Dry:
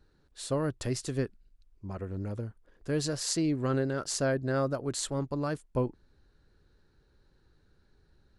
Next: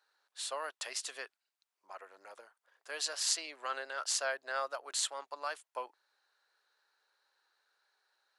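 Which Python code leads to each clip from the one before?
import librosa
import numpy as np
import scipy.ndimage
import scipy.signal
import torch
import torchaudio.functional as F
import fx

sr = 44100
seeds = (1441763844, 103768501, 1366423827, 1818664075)

y = scipy.signal.sosfilt(scipy.signal.butter(4, 730.0, 'highpass', fs=sr, output='sos'), x)
y = fx.dynamic_eq(y, sr, hz=3000.0, q=1.7, threshold_db=-56.0, ratio=4.0, max_db=5)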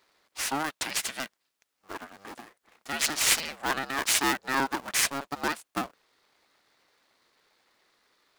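y = fx.cycle_switch(x, sr, every=2, mode='inverted')
y = y * librosa.db_to_amplitude(9.0)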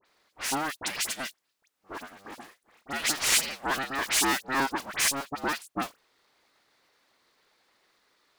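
y = fx.dispersion(x, sr, late='highs', ms=57.0, hz=2300.0)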